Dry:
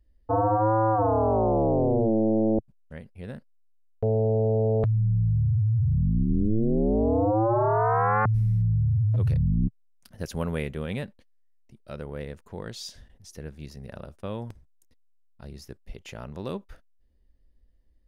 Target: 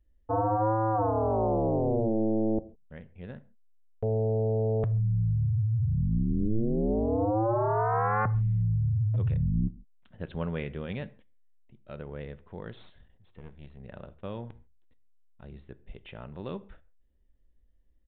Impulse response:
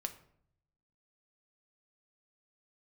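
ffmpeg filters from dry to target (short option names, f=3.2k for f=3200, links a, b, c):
-filter_complex "[0:a]asettb=1/sr,asplit=3[a][b][c];[a]atrim=end=12.734[d];[b]atrim=start=12.73:end=13.8,asetpts=PTS-STARTPTS,afade=t=in:d=0.004:c=qsin,afade=t=out:st=1.066:d=0.004:c=qsin,aeval=exprs='(tanh(50.1*val(0)+0.7)-tanh(0.7))/50.1':c=same[e];[c]atrim=start=13.796[f];[d][e]acrossfade=d=0.004:c1=hsin:c2=qsin[g];[g][f]acrossfade=d=0.004:c1=qsin:c2=hsin,asplit=2[h][i];[1:a]atrim=start_sample=2205,afade=t=out:st=0.19:d=0.01,atrim=end_sample=8820,asetrate=37926,aresample=44100[j];[i][j]afir=irnorm=-1:irlink=0,volume=-2.5dB[k];[h][k]amix=inputs=2:normalize=0,aresample=8000,aresample=44100,volume=-8.5dB"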